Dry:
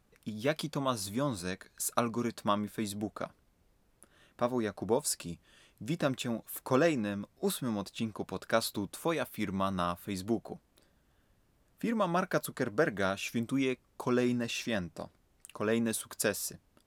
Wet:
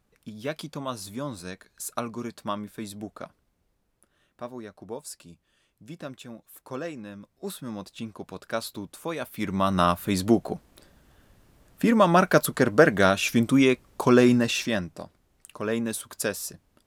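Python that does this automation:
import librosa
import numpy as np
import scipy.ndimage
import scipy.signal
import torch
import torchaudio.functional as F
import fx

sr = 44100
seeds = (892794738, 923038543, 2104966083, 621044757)

y = fx.gain(x, sr, db=fx.line((3.25, -1.0), (4.7, -7.5), (6.88, -7.5), (7.79, -1.0), (9.07, -1.0), (9.86, 11.5), (14.38, 11.5), (15.02, 2.5)))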